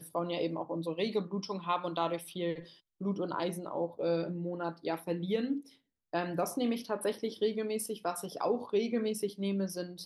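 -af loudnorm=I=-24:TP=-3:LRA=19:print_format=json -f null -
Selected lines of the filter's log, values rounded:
"input_i" : "-34.6",
"input_tp" : "-18.3",
"input_lra" : "1.7",
"input_thresh" : "-44.7",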